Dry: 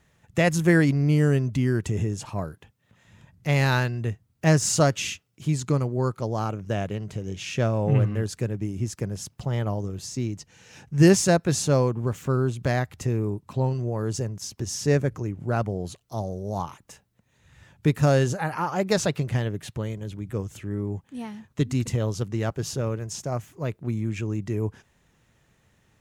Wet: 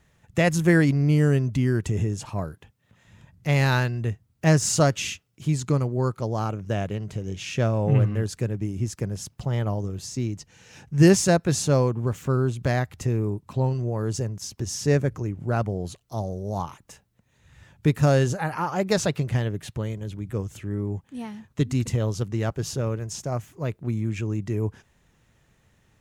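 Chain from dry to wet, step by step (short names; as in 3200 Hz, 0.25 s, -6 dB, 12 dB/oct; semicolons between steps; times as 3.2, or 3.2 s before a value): low shelf 65 Hz +5.5 dB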